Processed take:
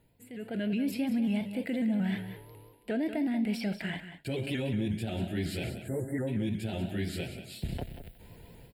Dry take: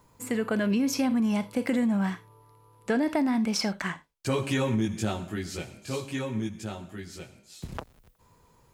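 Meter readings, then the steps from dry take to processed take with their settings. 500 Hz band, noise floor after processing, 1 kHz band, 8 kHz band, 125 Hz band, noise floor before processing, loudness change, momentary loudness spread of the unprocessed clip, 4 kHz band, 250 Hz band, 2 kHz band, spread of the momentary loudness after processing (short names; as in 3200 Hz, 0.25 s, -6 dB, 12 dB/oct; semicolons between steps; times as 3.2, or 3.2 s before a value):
-5.0 dB, -59 dBFS, -10.5 dB, -12.0 dB, -1.0 dB, -62 dBFS, -4.5 dB, 16 LU, -5.5 dB, -3.5 dB, -5.5 dB, 14 LU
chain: spectral delete 5.69–6.28, 2100–7100 Hz; reverse; compressor 6:1, threshold -39 dBFS, peak gain reduction 16 dB; reverse; limiter -34.5 dBFS, peak gain reduction 7.5 dB; AGC gain up to 15 dB; fixed phaser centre 2700 Hz, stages 4; small resonant body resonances 680/2900 Hz, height 9 dB, ringing for 95 ms; on a send: echo 0.187 s -11 dB; on the sum: shaped vibrato saw up 5.5 Hz, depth 100 cents; gain -3.5 dB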